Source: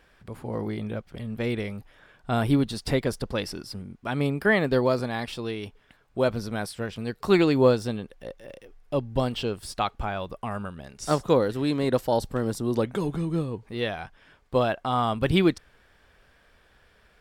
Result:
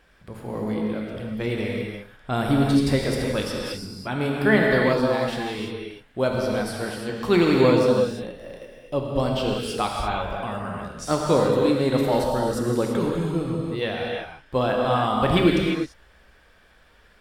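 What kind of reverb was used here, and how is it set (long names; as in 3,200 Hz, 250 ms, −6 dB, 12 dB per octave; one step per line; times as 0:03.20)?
reverb whose tail is shaped and stops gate 370 ms flat, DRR −1.5 dB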